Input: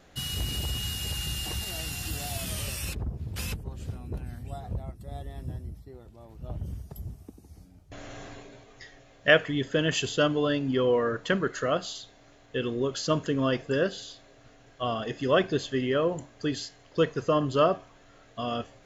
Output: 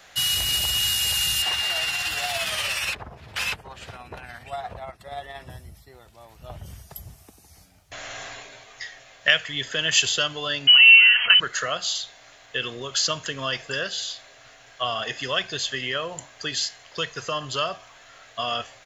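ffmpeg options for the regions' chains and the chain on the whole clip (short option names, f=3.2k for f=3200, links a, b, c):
-filter_complex "[0:a]asettb=1/sr,asplit=3[a][b][c];[a]atrim=end=1.424[d];[b]atrim=start=1.42:end=5.5,asetpts=PTS-STARTPTS,afade=t=in:d=0.004:c=qsin,afade=t=out:st=4.076:d=0.004:c=qsin,highshelf=f=4.4k:g=-11.5,tremolo=f=17:d=0.4,asplit=2[e][f];[f]highpass=f=720:p=1,volume=15dB,asoftclip=type=tanh:threshold=-23dB[g];[e][g]amix=inputs=2:normalize=0,lowpass=f=3.6k:p=1,volume=-6dB[h];[c]atrim=start=5.496[i];[d][h]acrossfade=d=0.004:c1=hsin:c2=qsin[j];[j][i]acrossfade=d=0.004:c1=qsin:c2=hsin,asettb=1/sr,asplit=3[k][l][m];[k]atrim=end=10.674[n];[l]atrim=start=10.67:end=11.4,asetpts=PTS-STARTPTS,afade=t=in:d=0.004:c=qsin,afade=t=out:st=0.726:d=0.004:c=qsin,aeval=exprs='val(0)+0.5*0.0266*sgn(val(0))':c=same,aecho=1:1:4:0.59,atrim=end_sample=32193,lowpass=f=2.7k:t=q:w=0.5098,lowpass=f=2.7k:t=q:w=0.6013,lowpass=f=2.7k:t=q:w=0.9,lowpass=f=2.7k:t=q:w=2.563,afreqshift=-3200[o];[m]atrim=start=11.396[p];[n][o]acrossfade=d=0.004:c1=hsin:c2=qsin[q];[q][p]acrossfade=d=0.004:c1=qsin:c2=hsin,lowshelf=f=140:g=-5.5,acrossover=split=150|3000[r][s][t];[s]acompressor=threshold=-30dB:ratio=6[u];[r][u][t]amix=inputs=3:normalize=0,firequalizer=gain_entry='entry(120,0);entry(270,-6);entry(680,7);entry(1900,13)':delay=0.05:min_phase=1,volume=-1dB"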